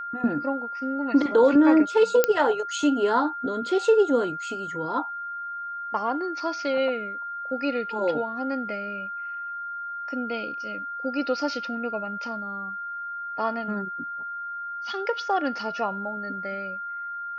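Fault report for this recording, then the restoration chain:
tone 1400 Hz -31 dBFS
2.24 pop -5 dBFS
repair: de-click; notch 1400 Hz, Q 30

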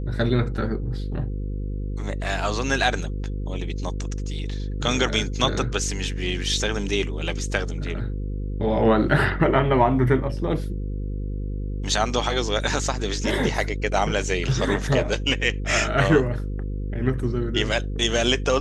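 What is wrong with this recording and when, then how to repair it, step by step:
buzz 50 Hz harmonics 10 -28 dBFS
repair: de-hum 50 Hz, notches 10

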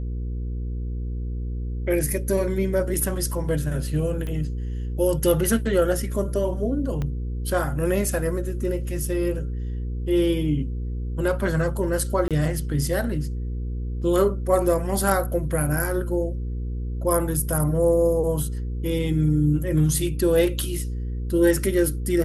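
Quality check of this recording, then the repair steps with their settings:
hum 60 Hz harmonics 8 -28 dBFS
4.27 pop -20 dBFS
7.02 pop -17 dBFS
12.28–12.31 gap 27 ms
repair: de-click; de-hum 60 Hz, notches 8; interpolate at 12.28, 27 ms

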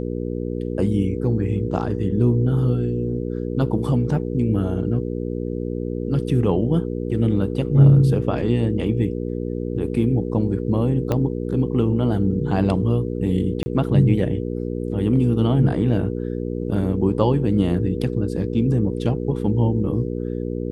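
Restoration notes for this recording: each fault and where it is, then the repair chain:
hum 60 Hz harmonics 8 -26 dBFS
11.12 pop -10 dBFS
13.63–13.66 gap 30 ms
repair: de-click; de-hum 60 Hz, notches 8; interpolate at 13.63, 30 ms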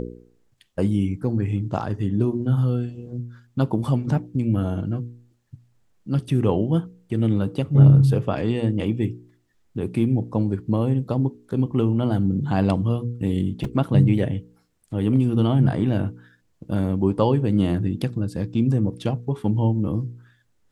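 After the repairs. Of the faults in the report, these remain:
11.12 pop

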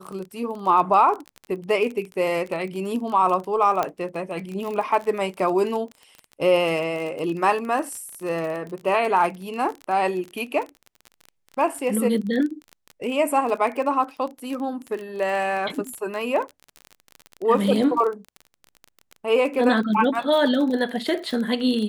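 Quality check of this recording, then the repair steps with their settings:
crackle 29/s -28 dBFS
3.83 pop -10 dBFS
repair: de-click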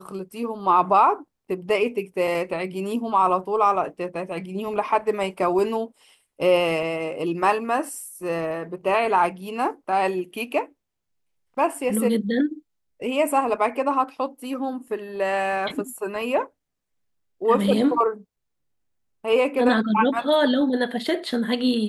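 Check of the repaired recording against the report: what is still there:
none

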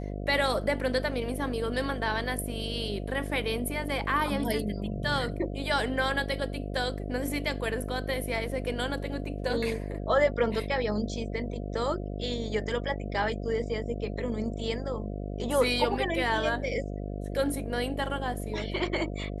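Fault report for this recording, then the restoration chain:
buzz 50 Hz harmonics 14 -35 dBFS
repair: de-hum 50 Hz, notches 14

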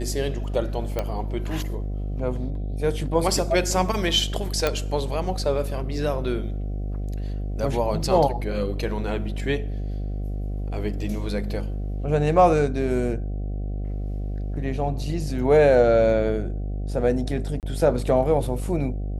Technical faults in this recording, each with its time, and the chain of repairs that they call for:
buzz 50 Hz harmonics 15 -28 dBFS
0.99 pop -12 dBFS
4.67 pop -7 dBFS
17.6–17.63 gap 28 ms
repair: de-click; de-hum 50 Hz, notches 15; interpolate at 17.6, 28 ms

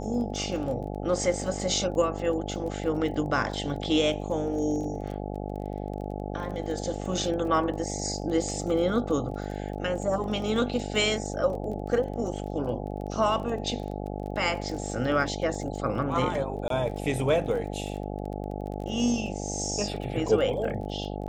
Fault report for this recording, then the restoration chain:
buzz 50 Hz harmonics 17 -34 dBFS
crackle 22/s -36 dBFS
16.68–16.7 gap 23 ms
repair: de-click; de-hum 50 Hz, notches 17; interpolate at 16.68, 23 ms

